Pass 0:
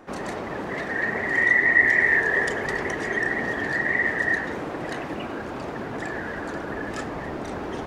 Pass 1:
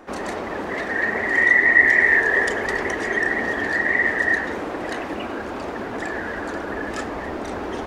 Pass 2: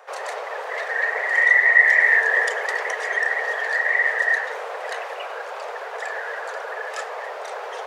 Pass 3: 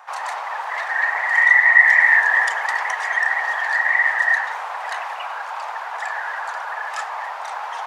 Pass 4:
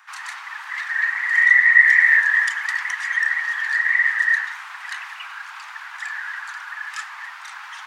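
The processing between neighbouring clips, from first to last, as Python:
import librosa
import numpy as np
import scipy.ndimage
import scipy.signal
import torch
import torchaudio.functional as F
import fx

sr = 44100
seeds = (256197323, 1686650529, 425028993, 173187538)

y1 = fx.peak_eq(x, sr, hz=140.0, db=-13.0, octaves=0.51)
y1 = y1 * 10.0 ** (3.5 / 20.0)
y2 = scipy.signal.sosfilt(scipy.signal.butter(12, 450.0, 'highpass', fs=sr, output='sos'), y1)
y3 = fx.low_shelf_res(y2, sr, hz=650.0, db=-10.5, q=3.0)
y3 = y3 * 10.0 ** (1.0 / 20.0)
y4 = scipy.signal.sosfilt(scipy.signal.butter(4, 1400.0, 'highpass', fs=sr, output='sos'), y3)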